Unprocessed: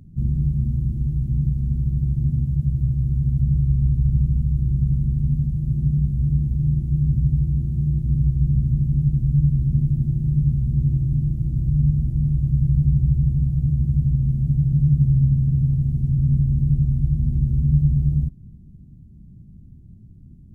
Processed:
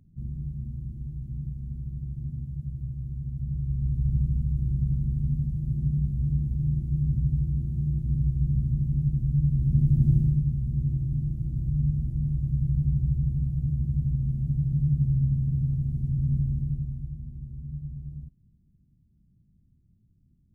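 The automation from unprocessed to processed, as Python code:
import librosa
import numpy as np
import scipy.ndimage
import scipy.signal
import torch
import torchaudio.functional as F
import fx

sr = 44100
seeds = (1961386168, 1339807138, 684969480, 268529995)

y = fx.gain(x, sr, db=fx.line((3.36, -13.0), (4.11, -6.0), (9.45, -6.0), (10.16, 2.0), (10.44, -7.0), (16.46, -7.0), (17.33, -19.0)))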